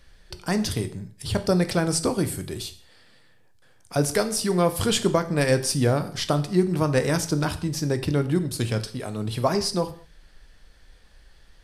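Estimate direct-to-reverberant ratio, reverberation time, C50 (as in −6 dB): 9.0 dB, non-exponential decay, 14.0 dB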